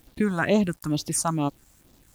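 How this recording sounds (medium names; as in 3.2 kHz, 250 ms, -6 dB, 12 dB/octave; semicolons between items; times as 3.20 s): phasing stages 4, 2.2 Hz, lowest notch 380–1900 Hz; a quantiser's noise floor 10-bit, dither none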